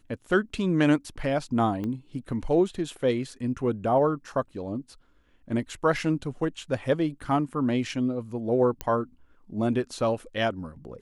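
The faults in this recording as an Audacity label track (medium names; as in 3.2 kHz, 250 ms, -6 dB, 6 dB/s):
1.840000	1.840000	pop -22 dBFS
8.810000	8.810000	pop -15 dBFS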